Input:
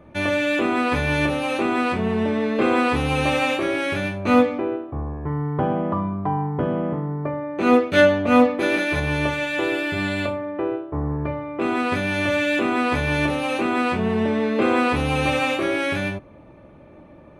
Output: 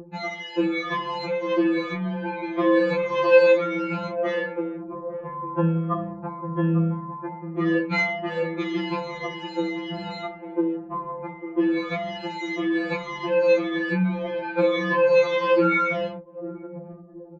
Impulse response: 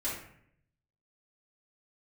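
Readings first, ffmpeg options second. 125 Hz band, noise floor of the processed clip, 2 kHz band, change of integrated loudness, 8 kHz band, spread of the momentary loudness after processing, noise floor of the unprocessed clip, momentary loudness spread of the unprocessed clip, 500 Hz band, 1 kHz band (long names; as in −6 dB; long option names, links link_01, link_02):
−3.5 dB, −41 dBFS, −5.0 dB, −2.5 dB, below −10 dB, 14 LU, −46 dBFS, 9 LU, 0.0 dB, −4.5 dB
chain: -filter_complex "[0:a]afftfilt=real='re*pow(10,14/40*sin(2*PI*(1.3*log(max(b,1)*sr/1024/100)/log(2)-(-1.8)*(pts-256)/sr)))':imag='im*pow(10,14/40*sin(2*PI*(1.3*log(max(b,1)*sr/1024/100)/log(2)-(-1.8)*(pts-256)/sr)))':win_size=1024:overlap=0.75,acompressor=mode=upward:threshold=-25dB:ratio=2.5,aresample=16000,aresample=44100,asplit=2[link_01][link_02];[link_02]adelay=848,lowpass=frequency=880:poles=1,volume=-10.5dB,asplit=2[link_03][link_04];[link_04]adelay=848,lowpass=frequency=880:poles=1,volume=0.44,asplit=2[link_05][link_06];[link_06]adelay=848,lowpass=frequency=880:poles=1,volume=0.44,asplit=2[link_07][link_08];[link_08]adelay=848,lowpass=frequency=880:poles=1,volume=0.44,asplit=2[link_09][link_10];[link_10]adelay=848,lowpass=frequency=880:poles=1,volume=0.44[link_11];[link_01][link_03][link_05][link_07][link_09][link_11]amix=inputs=6:normalize=0,anlmdn=251,highpass=frequency=130:poles=1,aemphasis=mode=reproduction:type=75kf,afftfilt=real='re*2.83*eq(mod(b,8),0)':imag='im*2.83*eq(mod(b,8),0)':win_size=2048:overlap=0.75,volume=3dB"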